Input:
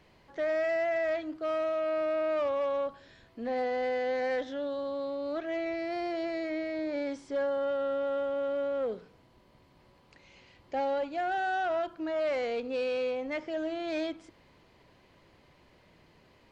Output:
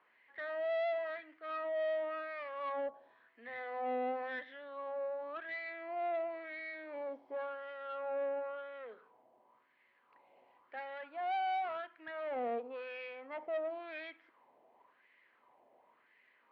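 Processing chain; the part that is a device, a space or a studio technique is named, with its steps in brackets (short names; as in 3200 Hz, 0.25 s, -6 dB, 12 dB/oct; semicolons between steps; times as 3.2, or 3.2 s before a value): wah-wah guitar rig (wah 0.94 Hz 690–2000 Hz, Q 4; tube stage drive 38 dB, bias 0.4; speaker cabinet 92–3800 Hz, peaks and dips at 97 Hz -8 dB, 170 Hz -7 dB, 240 Hz +6 dB, 450 Hz +3 dB, 1400 Hz -3 dB); gain +5.5 dB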